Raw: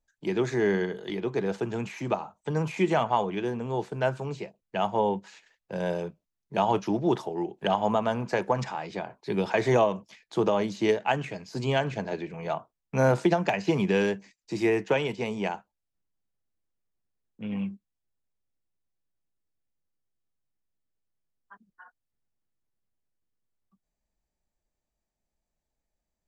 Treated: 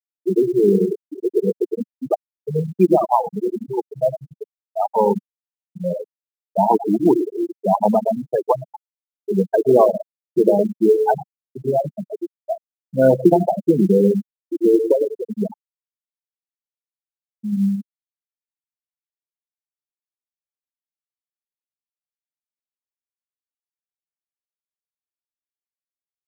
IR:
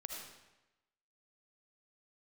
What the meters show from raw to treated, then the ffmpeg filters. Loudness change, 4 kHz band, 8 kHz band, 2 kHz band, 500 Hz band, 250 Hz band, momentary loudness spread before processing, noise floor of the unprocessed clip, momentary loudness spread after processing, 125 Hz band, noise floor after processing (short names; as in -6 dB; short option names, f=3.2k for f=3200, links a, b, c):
+9.0 dB, under -10 dB, n/a, -8.5 dB, +9.5 dB, +9.5 dB, 11 LU, -85 dBFS, 14 LU, +4.5 dB, under -85 dBFS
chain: -filter_complex "[0:a]aecho=1:1:106|212|318:0.355|0.0745|0.0156,asplit=2[a][b];[1:a]atrim=start_sample=2205[c];[b][c]afir=irnorm=-1:irlink=0,volume=-4dB[d];[a][d]amix=inputs=2:normalize=0,afftfilt=real='re*gte(hypot(re,im),0.355)':imag='im*gte(hypot(re,im),0.355)':win_size=1024:overlap=0.75,lowshelf=f=140:t=q:w=1.5:g=-11.5,acrusher=bits=9:mode=log:mix=0:aa=0.000001,volume=6.5dB"